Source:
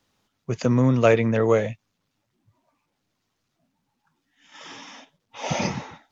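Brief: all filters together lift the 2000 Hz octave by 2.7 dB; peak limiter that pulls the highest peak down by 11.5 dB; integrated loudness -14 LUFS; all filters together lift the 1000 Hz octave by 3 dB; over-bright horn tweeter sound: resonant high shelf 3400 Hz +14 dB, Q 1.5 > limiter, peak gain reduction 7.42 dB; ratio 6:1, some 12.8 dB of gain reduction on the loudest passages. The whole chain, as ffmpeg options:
-af "equalizer=f=1k:t=o:g=4,equalizer=f=2k:t=o:g=5,acompressor=threshold=-24dB:ratio=6,alimiter=level_in=0.5dB:limit=-24dB:level=0:latency=1,volume=-0.5dB,highshelf=f=3.4k:t=q:w=1.5:g=14,volume=19dB,alimiter=limit=-4dB:level=0:latency=1"

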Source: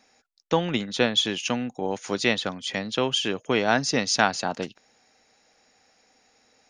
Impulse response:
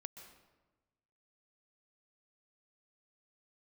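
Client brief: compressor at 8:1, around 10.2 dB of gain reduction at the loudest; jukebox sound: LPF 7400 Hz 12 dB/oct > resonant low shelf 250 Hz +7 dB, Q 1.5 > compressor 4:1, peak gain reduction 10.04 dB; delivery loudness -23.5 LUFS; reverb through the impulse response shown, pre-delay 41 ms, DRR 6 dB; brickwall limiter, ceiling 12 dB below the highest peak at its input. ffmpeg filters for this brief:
-filter_complex "[0:a]acompressor=threshold=-26dB:ratio=8,alimiter=limit=-23.5dB:level=0:latency=1,asplit=2[a][b];[1:a]atrim=start_sample=2205,adelay=41[c];[b][c]afir=irnorm=-1:irlink=0,volume=-1dB[d];[a][d]amix=inputs=2:normalize=0,lowpass=7.4k,lowshelf=f=250:t=q:w=1.5:g=7,acompressor=threshold=-34dB:ratio=4,volume=13.5dB"

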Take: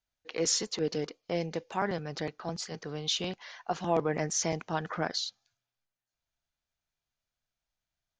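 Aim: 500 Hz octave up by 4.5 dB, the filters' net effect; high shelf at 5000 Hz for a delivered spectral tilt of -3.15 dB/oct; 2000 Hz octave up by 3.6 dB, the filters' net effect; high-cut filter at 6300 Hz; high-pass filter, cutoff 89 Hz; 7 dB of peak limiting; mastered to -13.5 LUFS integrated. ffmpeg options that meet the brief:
-af "highpass=89,lowpass=6.3k,equalizer=f=500:t=o:g=5,equalizer=f=2k:t=o:g=3.5,highshelf=f=5k:g=5.5,volume=18.5dB,alimiter=limit=-0.5dB:level=0:latency=1"

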